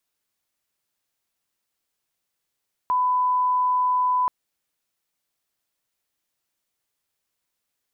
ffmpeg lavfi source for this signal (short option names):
-f lavfi -i "sine=f=1000:d=1.38:r=44100,volume=0.06dB"